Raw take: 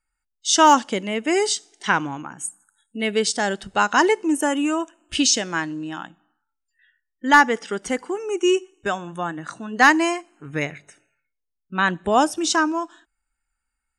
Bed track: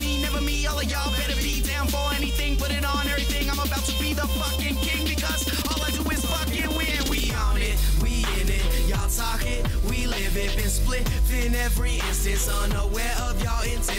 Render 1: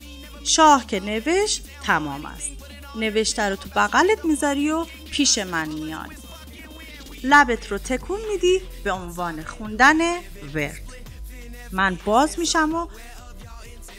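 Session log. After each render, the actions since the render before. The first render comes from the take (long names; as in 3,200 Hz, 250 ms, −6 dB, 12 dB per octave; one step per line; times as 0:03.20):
mix in bed track −15 dB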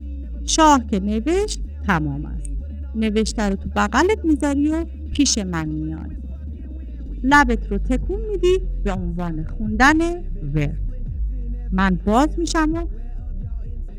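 adaptive Wiener filter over 41 samples
bass and treble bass +13 dB, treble +1 dB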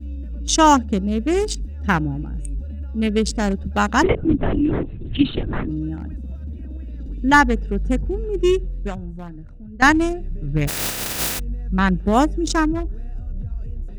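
0:04.03–0:05.69: linear-prediction vocoder at 8 kHz whisper
0:08.48–0:09.82: fade out quadratic, to −14.5 dB
0:10.67–0:11.38: compressing power law on the bin magnitudes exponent 0.14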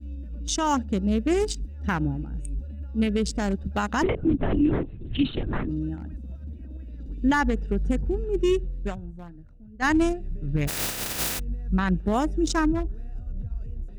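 brickwall limiter −13 dBFS, peak gain reduction 11 dB
expander for the loud parts 1.5 to 1, over −38 dBFS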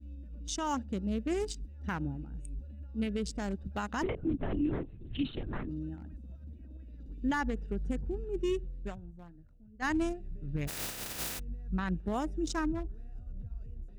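level −9.5 dB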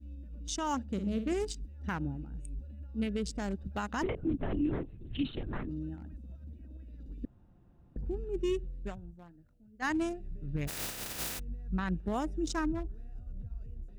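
0:00.92–0:01.33: flutter between parallel walls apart 9.4 metres, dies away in 0.35 s
0:07.25–0:07.96: fill with room tone
0:09.14–0:10.13: low-shelf EQ 100 Hz −10 dB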